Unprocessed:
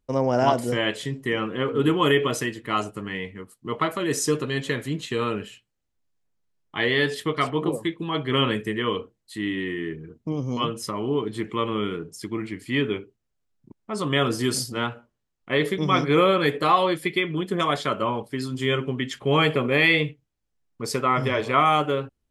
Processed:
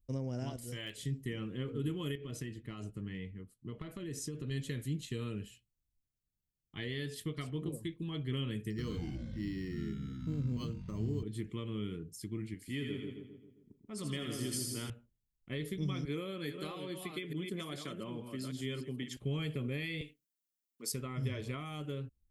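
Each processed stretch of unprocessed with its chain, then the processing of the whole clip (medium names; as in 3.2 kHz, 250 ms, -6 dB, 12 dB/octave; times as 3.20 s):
0.56–0.98 s: peaking EQ 200 Hz -10.5 dB 2.9 oct + hard clipper -16 dBFS
2.15–4.51 s: low-pass 3.1 kHz 6 dB/octave + compression 10:1, threshold -25 dBFS
8.70–11.23 s: careless resampling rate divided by 6×, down filtered, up hold + ever faster or slower copies 81 ms, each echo -6 st, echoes 3, each echo -6 dB + distance through air 200 m
12.54–14.90 s: bass shelf 140 Hz -10.5 dB + two-band feedback delay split 1 kHz, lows 133 ms, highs 82 ms, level -4 dB
16.05–19.17 s: chunks repeated in reverse 427 ms, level -7.5 dB + high-pass 190 Hz
20.01–20.92 s: high-pass 220 Hz 24 dB/octave + tilt EQ +2 dB/octave
whole clip: treble shelf 9.8 kHz +12 dB; compression 4:1, threshold -22 dBFS; amplifier tone stack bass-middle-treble 10-0-1; trim +8.5 dB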